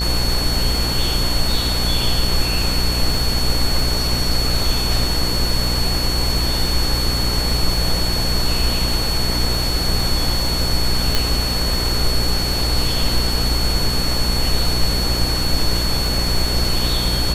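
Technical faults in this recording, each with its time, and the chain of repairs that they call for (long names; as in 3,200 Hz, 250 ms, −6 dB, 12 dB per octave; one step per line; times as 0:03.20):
mains buzz 60 Hz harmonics 29 −23 dBFS
surface crackle 33 per second −24 dBFS
whistle 4,400 Hz −22 dBFS
0:11.15: click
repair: click removal
hum removal 60 Hz, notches 29
notch filter 4,400 Hz, Q 30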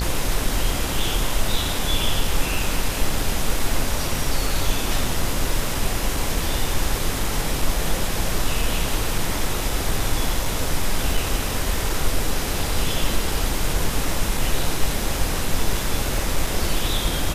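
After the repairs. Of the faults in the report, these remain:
0:11.15: click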